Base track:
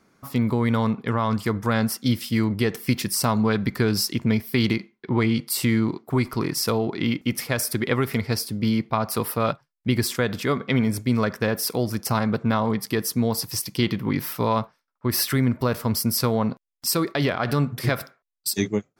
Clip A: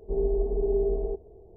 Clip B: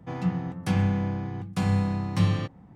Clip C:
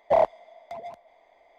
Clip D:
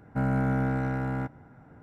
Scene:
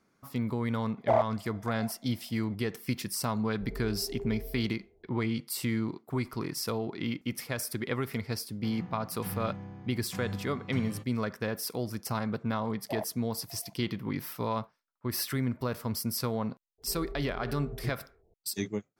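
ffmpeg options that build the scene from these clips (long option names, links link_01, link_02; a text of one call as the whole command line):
ffmpeg -i bed.wav -i cue0.wav -i cue1.wav -i cue2.wav -filter_complex "[3:a]asplit=2[link_01][link_02];[1:a]asplit=2[link_03][link_04];[0:a]volume=-9.5dB[link_05];[link_03]asplit=2[link_06][link_07];[link_07]adelay=9.5,afreqshift=1.3[link_08];[link_06][link_08]amix=inputs=2:normalize=1[link_09];[link_04]equalizer=frequency=370:width=6.9:gain=-7[link_10];[link_01]atrim=end=1.58,asetpts=PTS-STARTPTS,volume=-5dB,afade=type=in:duration=0.004:curve=hsin,afade=type=out:start_time=1.576:duration=0.004:curve=hsin,adelay=970[link_11];[link_09]atrim=end=1.56,asetpts=PTS-STARTPTS,volume=-11.5dB,afade=type=in:duration=0.004:curve=hsin,afade=type=out:start_time=1.556:duration=0.004:curve=hsin,adelay=3510[link_12];[2:a]atrim=end=2.75,asetpts=PTS-STARTPTS,volume=-14.5dB,afade=type=in:duration=0.004:curve=hsin,afade=type=out:start_time=2.746:duration=0.004:curve=hsin,adelay=8560[link_13];[link_02]atrim=end=1.58,asetpts=PTS-STARTPTS,volume=-17.5dB,afade=type=in:duration=0.004:curve=hsin,afade=type=out:start_time=1.576:duration=0.004:curve=hsin,adelay=12790[link_14];[link_10]atrim=end=1.56,asetpts=PTS-STARTPTS,volume=-14dB,afade=type=in:duration=0.004:curve=hsin,afade=type=out:start_time=1.556:duration=0.004:curve=hsin,adelay=16780[link_15];[link_05][link_11][link_12][link_13][link_14][link_15]amix=inputs=6:normalize=0" out.wav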